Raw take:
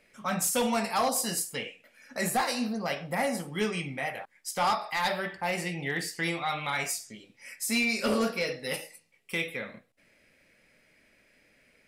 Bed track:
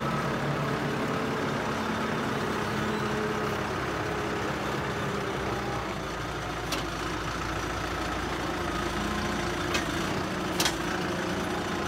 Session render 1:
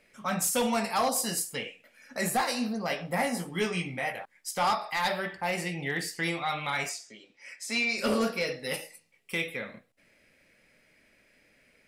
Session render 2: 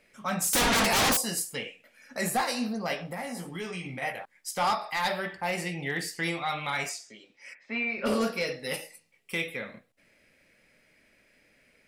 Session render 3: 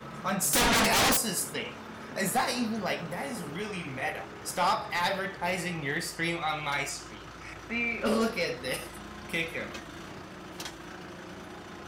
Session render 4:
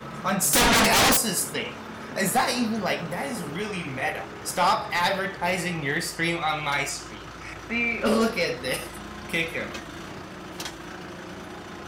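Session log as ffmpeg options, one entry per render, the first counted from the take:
-filter_complex "[0:a]asettb=1/sr,asplit=3[a][b][c];[a]atrim=end=2.884[d];[b]atrim=start=2.88:end=4.13,asetpts=PTS-STARTPTS,afade=t=in:d=0.004:c=qsin,afade=t=out:st=1.246:d=0.004:c=qsin,asplit=2[e][f];[f]adelay=17,volume=-6dB[g];[e][g]amix=inputs=2:normalize=0,atrim=end_sample=55125[h];[c]atrim=start=4.126[i];[d][h]acrossfade=d=0.004:c1=hsin:c2=qsin[j];[j][i]acrossfade=d=0.004:c1=qsin:c2=hsin,asettb=1/sr,asplit=3[k][l][m];[k]atrim=end=6.894[n];[l]atrim=start=6.89:end=7.98,asetpts=PTS-STARTPTS,afade=t=in:d=0.004:c=qsin,afade=t=out:st=1.086:d=0.004:c=qsin,acrossover=split=270 7600:gain=0.178 1 0.0891[o][p][q];[o][p][q]amix=inputs=3:normalize=0[r];[m]atrim=start=7.976[s];[n][r]acrossfade=d=0.004:c1=hsin:c2=qsin[t];[t][s]acrossfade=d=0.004:c1=qsin:c2=hsin"
-filter_complex "[0:a]asettb=1/sr,asplit=3[a][b][c];[a]atrim=end=0.534[d];[b]atrim=start=0.53:end=1.17,asetpts=PTS-STARTPTS,afade=t=in:d=0.004:c=qsin,afade=t=out:st=0.636:d=0.004:c=qsin,aeval=exprs='0.0944*sin(PI/2*3.55*val(0)/0.0944)':c=same[e];[c]atrim=start=1.166[f];[d][e]acrossfade=d=0.004:c1=hsin:c2=qsin[g];[g][f]acrossfade=d=0.004:c1=qsin:c2=hsin,asettb=1/sr,asplit=3[h][i][j];[h]atrim=end=3.024[k];[i]atrim=start=3.02:end=4.02,asetpts=PTS-STARTPTS,afade=t=in:d=0.004:c=qsin,afade=t=out:st=0.996:d=0.004:c=qsin,acompressor=threshold=-33dB:ratio=4:attack=3.2:release=140:knee=1:detection=peak[l];[j]atrim=start=4.016[m];[k][l]acrossfade=d=0.004:c1=hsin:c2=qsin[n];[n][m]acrossfade=d=0.004:c1=qsin:c2=hsin,asplit=3[o][p][q];[o]afade=t=out:st=7.53:d=0.02[r];[p]lowpass=f=2.5k:w=0.5412,lowpass=f=2.5k:w=1.3066,afade=t=in:st=7.53:d=0.02,afade=t=out:st=8.05:d=0.02[s];[q]afade=t=in:st=8.05:d=0.02[t];[r][s][t]amix=inputs=3:normalize=0"
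-filter_complex "[1:a]volume=-13.5dB[a];[0:a][a]amix=inputs=2:normalize=0"
-af "volume=5dB"

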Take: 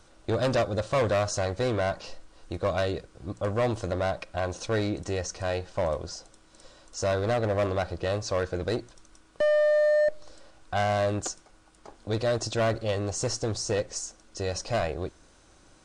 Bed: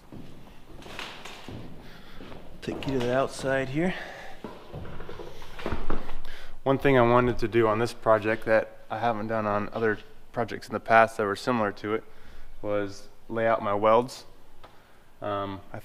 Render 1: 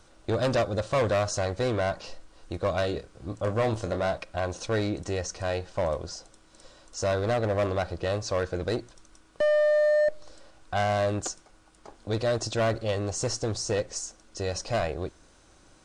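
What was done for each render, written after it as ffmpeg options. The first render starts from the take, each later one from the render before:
-filter_complex "[0:a]asettb=1/sr,asplit=3[a][b][c];[a]atrim=end=2.814[d];[b]atrim=start=2.81:end=4.18,asetpts=PTS-STARTPTS,afade=t=in:d=0.004:c=qsin,afade=t=out:st=1.366:d=0.004:c=qsin,asplit=2[e][f];[f]adelay=27,volume=-9dB[g];[e][g]amix=inputs=2:normalize=0,atrim=end_sample=60417[h];[c]atrim=start=4.176[i];[d][h]acrossfade=d=0.004:c1=hsin:c2=qsin[j];[j][i]acrossfade=d=0.004:c1=qsin:c2=hsin"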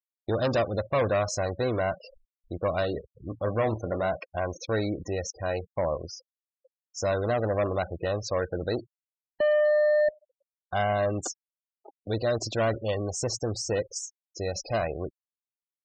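-af "highpass=f=62:p=1,afftfilt=real='re*gte(hypot(re,im),0.02)':imag='im*gte(hypot(re,im),0.02)':win_size=1024:overlap=0.75"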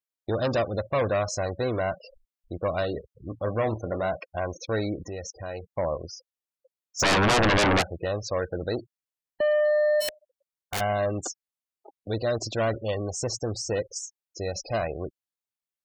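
-filter_complex "[0:a]asettb=1/sr,asplit=3[a][b][c];[a]atrim=end=5.034[d];[b]atrim=start=5.03:end=5.65,asetpts=PTS-STARTPTS,afade=t=in:d=0.004:c=qsin,afade=t=out:st=0.616:d=0.004:c=qsin,acompressor=threshold=-35dB:ratio=2:attack=3.2:release=140:knee=1:detection=peak[e];[c]atrim=start=5.646[f];[d][e]acrossfade=d=0.004:c1=hsin:c2=qsin[g];[g][f]acrossfade=d=0.004:c1=qsin:c2=hsin,asplit=3[h][i][j];[h]afade=t=out:st=6.99:d=0.02[k];[i]aeval=exprs='0.133*sin(PI/2*4.47*val(0)/0.133)':c=same,afade=t=in:st=6.99:d=0.02,afade=t=out:st=7.81:d=0.02[l];[j]afade=t=in:st=7.81:d=0.02[m];[k][l][m]amix=inputs=3:normalize=0,asplit=3[n][o][p];[n]afade=t=out:st=10:d=0.02[q];[o]aeval=exprs='(mod(15*val(0)+1,2)-1)/15':c=same,afade=t=in:st=10:d=0.02,afade=t=out:st=10.79:d=0.02[r];[p]afade=t=in:st=10.79:d=0.02[s];[q][r][s]amix=inputs=3:normalize=0"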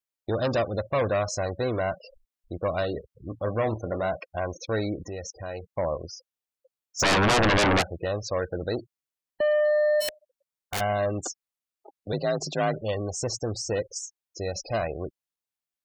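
-filter_complex "[0:a]asettb=1/sr,asplit=3[a][b][c];[a]atrim=end=12.124[d];[b]atrim=start=12.12:end=12.81,asetpts=PTS-STARTPTS,afade=t=in:d=0.004:c=qsin,afade=t=out:st=0.686:d=0.004:c=qsin,afreqshift=42[e];[c]atrim=start=12.806[f];[d][e]acrossfade=d=0.004:c1=hsin:c2=qsin[g];[g][f]acrossfade=d=0.004:c1=qsin:c2=hsin"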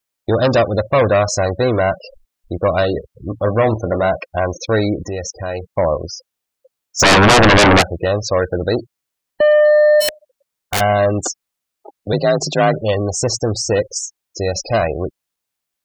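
-af "volume=11.5dB"

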